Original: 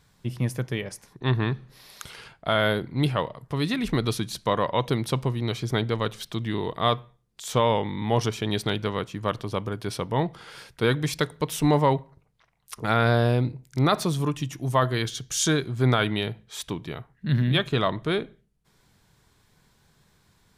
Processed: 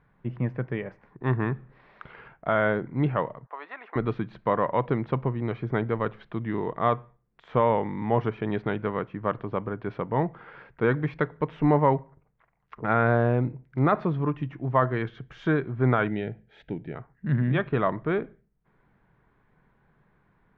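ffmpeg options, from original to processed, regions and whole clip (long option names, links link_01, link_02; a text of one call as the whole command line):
ffmpeg -i in.wav -filter_complex "[0:a]asettb=1/sr,asplit=3[link_01][link_02][link_03];[link_01]atrim=end=3.464[link_04];[link_02]atrim=start=3.46:end=3.96,asetpts=PTS-STARTPTS,afade=type=in:duration=0.004:curve=qsin,afade=type=out:start_time=0.496:duration=0.004:curve=qsin,highpass=frequency=770:width=0.5412,highpass=frequency=770:width=1.3066,tiltshelf=frequency=1100:gain=8.5[link_05];[link_03]atrim=start=3.956[link_06];[link_04][link_05]acrossfade=duration=0.004:curve1=hsin:curve2=qsin[link_07];[link_07][link_06]acrossfade=duration=0.004:curve1=qsin:curve2=hsin,asettb=1/sr,asplit=3[link_08][link_09][link_10];[link_08]atrim=end=16.084[link_11];[link_09]atrim=start=16.08:end=16.95,asetpts=PTS-STARTPTS,afade=type=in:duration=0.004:curve=qsin,afade=type=out:start_time=0.866:duration=0.004:curve=qsin,asuperstop=centerf=1100:order=4:qfactor=1.8,equalizer=frequency=1400:width=0.41:gain=-3[link_12];[link_10]atrim=start=16.946[link_13];[link_11][link_12]acrossfade=duration=0.004:curve1=hsin:curve2=qsin[link_14];[link_14][link_13]acrossfade=duration=0.004:curve1=qsin:curve2=hsin,lowpass=frequency=2000:width=0.5412,lowpass=frequency=2000:width=1.3066,equalizer=frequency=84:width=2.6:gain=-10.5" out.wav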